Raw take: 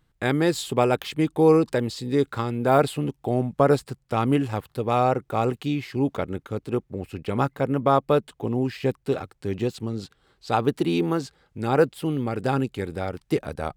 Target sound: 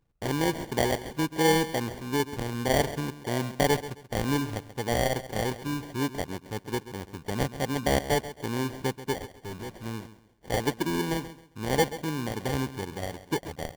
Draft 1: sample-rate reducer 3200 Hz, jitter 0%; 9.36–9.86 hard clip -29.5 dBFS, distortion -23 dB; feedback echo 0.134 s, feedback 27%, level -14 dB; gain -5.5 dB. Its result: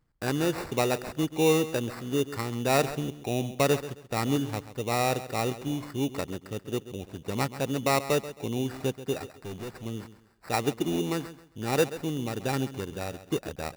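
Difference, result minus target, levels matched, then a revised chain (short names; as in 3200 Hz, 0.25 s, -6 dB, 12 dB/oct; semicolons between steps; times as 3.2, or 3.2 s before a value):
sample-rate reducer: distortion -10 dB
sample-rate reducer 1300 Hz, jitter 0%; 9.36–9.86 hard clip -29.5 dBFS, distortion -23 dB; feedback echo 0.134 s, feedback 27%, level -14 dB; gain -5.5 dB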